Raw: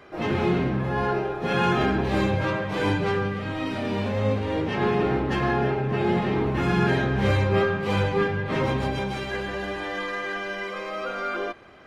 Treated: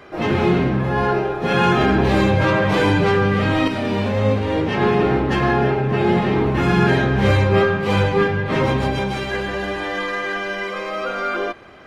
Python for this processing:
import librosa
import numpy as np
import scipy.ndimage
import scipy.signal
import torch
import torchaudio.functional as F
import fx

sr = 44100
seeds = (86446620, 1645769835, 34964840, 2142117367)

y = fx.env_flatten(x, sr, amount_pct=70, at=(1.89, 3.68))
y = y * librosa.db_to_amplitude(6.0)